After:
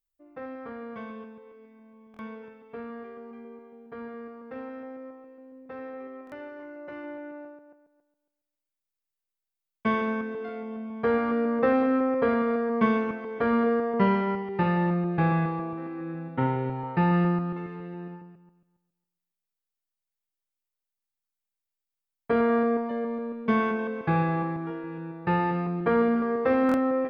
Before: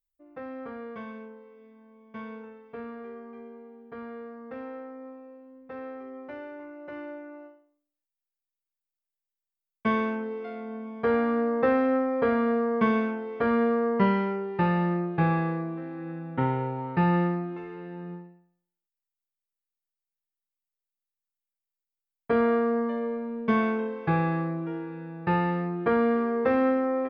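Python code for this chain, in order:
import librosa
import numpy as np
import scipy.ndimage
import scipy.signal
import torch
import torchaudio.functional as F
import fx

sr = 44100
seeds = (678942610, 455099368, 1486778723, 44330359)

y = fx.reverse_delay_fb(x, sr, ms=138, feedback_pct=43, wet_db=-11)
y = fx.buffer_glitch(y, sr, at_s=(2.12, 6.25, 26.67), block=1024, repeats=2)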